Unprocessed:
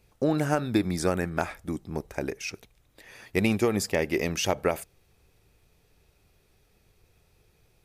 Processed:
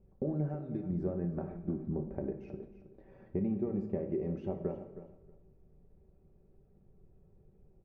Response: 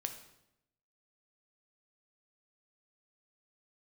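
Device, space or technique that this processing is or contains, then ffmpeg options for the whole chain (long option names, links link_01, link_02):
television next door: -filter_complex "[0:a]aecho=1:1:5.2:0.52,acompressor=threshold=-32dB:ratio=4,lowpass=430[link_01];[1:a]atrim=start_sample=2205[link_02];[link_01][link_02]afir=irnorm=-1:irlink=0,asettb=1/sr,asplit=3[link_03][link_04][link_05];[link_03]atrim=end=0.494[link_06];[link_04]atrim=start=0.49:end=0.9,asetpts=PTS-STARTPTS,afade=type=in:duration=0.004:curve=qsin,afade=type=out:start_time=0.406:duration=0.004:curve=qsin,tiltshelf=frequency=1400:gain=-5.5[link_07];[link_05]atrim=start=0.896[link_08];[link_06][link_07]acrossfade=duration=0.004:curve1=hsin:curve2=qsin[link_09];[link_09][link_08]acrossfade=duration=0.004:curve1=qsin:curve2=hsin,aecho=1:1:317|634:0.224|0.0381,volume=3dB"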